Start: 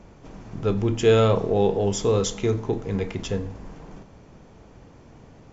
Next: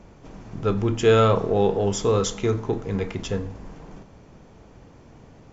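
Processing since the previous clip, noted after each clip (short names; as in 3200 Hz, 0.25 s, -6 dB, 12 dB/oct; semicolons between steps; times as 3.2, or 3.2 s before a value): dynamic EQ 1300 Hz, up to +6 dB, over -43 dBFS, Q 1.9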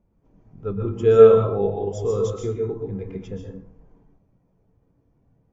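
plate-style reverb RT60 0.58 s, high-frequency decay 0.85×, pre-delay 0.11 s, DRR 0.5 dB; spectral expander 1.5:1; gain +1 dB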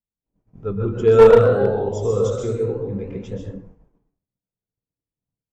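echoes that change speed 0.195 s, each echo +1 st, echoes 3, each echo -6 dB; one-sided clip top -9 dBFS; expander -42 dBFS; gain +2 dB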